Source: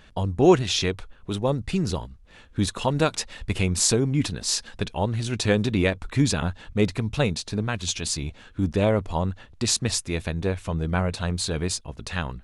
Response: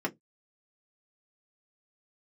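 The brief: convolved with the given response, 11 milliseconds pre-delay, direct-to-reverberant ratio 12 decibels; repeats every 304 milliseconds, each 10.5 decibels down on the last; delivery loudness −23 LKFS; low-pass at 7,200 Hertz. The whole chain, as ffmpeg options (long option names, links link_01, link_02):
-filter_complex "[0:a]lowpass=7200,aecho=1:1:304|608|912:0.299|0.0896|0.0269,asplit=2[link_01][link_02];[1:a]atrim=start_sample=2205,adelay=11[link_03];[link_02][link_03]afir=irnorm=-1:irlink=0,volume=-18.5dB[link_04];[link_01][link_04]amix=inputs=2:normalize=0,volume=1.5dB"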